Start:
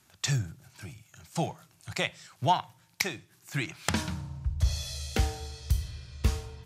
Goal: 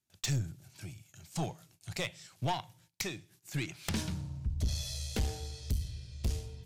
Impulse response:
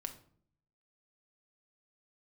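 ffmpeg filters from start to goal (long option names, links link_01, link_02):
-af "agate=range=-21dB:threshold=-59dB:ratio=16:detection=peak,asetnsamples=nb_out_samples=441:pad=0,asendcmd='5.74 equalizer g -15',equalizer=frequency=1200:width_type=o:width=1.5:gain=-8.5,aeval=exprs='(tanh(20*val(0)+0.3)-tanh(0.3))/20':channel_layout=same"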